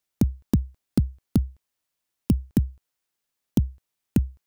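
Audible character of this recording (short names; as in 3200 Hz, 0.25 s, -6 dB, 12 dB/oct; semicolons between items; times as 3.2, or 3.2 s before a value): noise floor -82 dBFS; spectral tilt -10.5 dB/oct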